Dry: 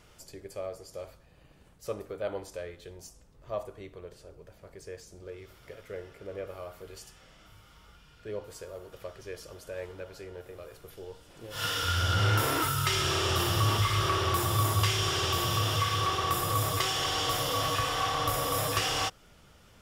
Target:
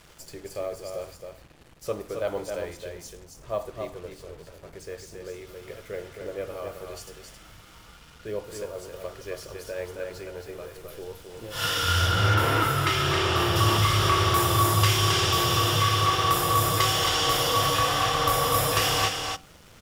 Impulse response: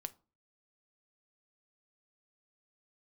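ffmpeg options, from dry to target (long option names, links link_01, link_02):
-filter_complex "[0:a]acrusher=bits=8:mix=0:aa=0.5,bandreject=frequency=94.21:width_type=h:width=4,bandreject=frequency=188.42:width_type=h:width=4,bandreject=frequency=282.63:width_type=h:width=4,asettb=1/sr,asplit=3[link_01][link_02][link_03];[link_01]atrim=end=12.074[link_04];[link_02]atrim=start=12.07:end=13.56,asetpts=PTS-STARTPTS,afade=type=in:duration=0.004:curve=qsin,afade=type=out:start_time=1.486:duration=0.004:curve=qsin,bass=frequency=250:gain=-1,treble=frequency=4000:gain=-9[link_05];[link_03]atrim=start=13.556[link_06];[link_04][link_05]acrossfade=duration=0.004:curve1=hsin:curve2=qsin[link_07];[link_07][link_06]acrossfade=duration=0.004:curve1=qsin:curve2=hsin,aecho=1:1:269:0.531,asplit=2[link_08][link_09];[1:a]atrim=start_sample=2205[link_10];[link_09][link_10]afir=irnorm=-1:irlink=0,volume=0.5dB[link_11];[link_08][link_11]amix=inputs=2:normalize=0"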